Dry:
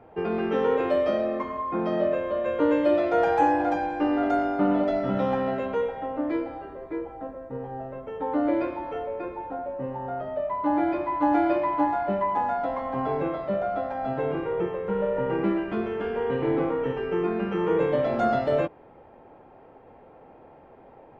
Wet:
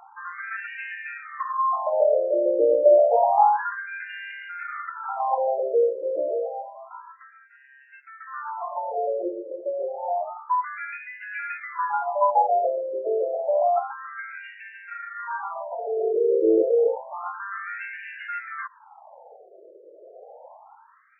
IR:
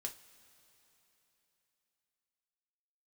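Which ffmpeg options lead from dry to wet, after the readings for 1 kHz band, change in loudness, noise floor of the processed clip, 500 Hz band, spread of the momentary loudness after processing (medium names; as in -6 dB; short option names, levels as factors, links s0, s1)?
+2.5 dB, +1.5 dB, -53 dBFS, +2.0 dB, 16 LU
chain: -af "aphaser=in_gain=1:out_gain=1:delay=3.4:decay=0.23:speed=0.16:type=triangular,afftfilt=real='re*between(b*sr/1024,450*pow(2100/450,0.5+0.5*sin(2*PI*0.29*pts/sr))/1.41,450*pow(2100/450,0.5+0.5*sin(2*PI*0.29*pts/sr))*1.41)':imag='im*between(b*sr/1024,450*pow(2100/450,0.5+0.5*sin(2*PI*0.29*pts/sr))/1.41,450*pow(2100/450,0.5+0.5*sin(2*PI*0.29*pts/sr))*1.41)':win_size=1024:overlap=0.75,volume=2.24"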